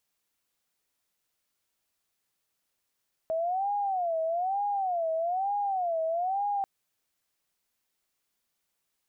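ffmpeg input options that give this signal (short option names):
-f lavfi -i "aevalsrc='0.0501*sin(2*PI*(731.5*t-87.5/(2*PI*1.1)*sin(2*PI*1.1*t)))':d=3.34:s=44100"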